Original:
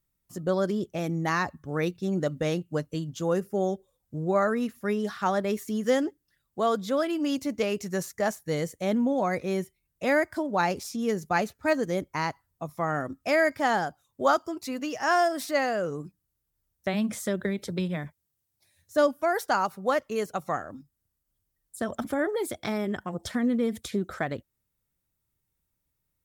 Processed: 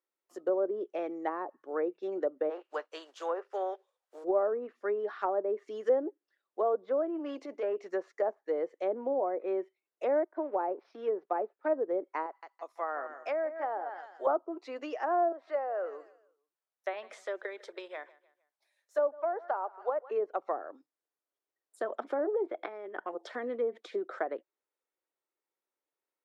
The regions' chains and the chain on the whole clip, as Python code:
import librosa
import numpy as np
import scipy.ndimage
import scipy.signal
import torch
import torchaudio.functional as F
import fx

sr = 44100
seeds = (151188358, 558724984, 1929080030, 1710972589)

y = fx.spec_flatten(x, sr, power=0.69, at=(2.49, 4.23), fade=0.02)
y = fx.highpass(y, sr, hz=620.0, slope=12, at=(2.49, 4.23), fade=0.02)
y = fx.notch(y, sr, hz=2100.0, q=26.0, at=(2.49, 4.23), fade=0.02)
y = fx.chain(y, sr, fx.high_shelf(hz=4400.0, db=-10.0),
    fx.transient(attack_db=-10, sustain_db=3),
    fx.clip_hard(threshold_db=-24.0), at=(7.07, 7.76))
y = fx.chain(y, sr, fx.law_mismatch(coded='A'),
    fx.moving_average(points=6), at=(10.24, 11.75))
y = fx.chain(y, sr, fx.highpass(hz=940.0, slope=6),
    fx.echo_feedback(ms=165, feedback_pct=30, wet_db=-11.0), at=(12.26, 14.27))
y = fx.chain(y, sr, fx.highpass(hz=610.0, slope=12),
    fx.echo_feedback(ms=153, feedback_pct=39, wet_db=-21.0), at=(15.32, 20.11))
y = fx.chain(y, sr, fx.lowpass(hz=2500.0, slope=12),
    fx.over_compress(threshold_db=-36.0, ratio=-1.0), at=(22.46, 23.06))
y = scipy.signal.sosfilt(scipy.signal.butter(6, 350.0, 'highpass', fs=sr, output='sos'), y)
y = fx.env_lowpass_down(y, sr, base_hz=710.0, full_db=-25.0)
y = fx.lowpass(y, sr, hz=1300.0, slope=6)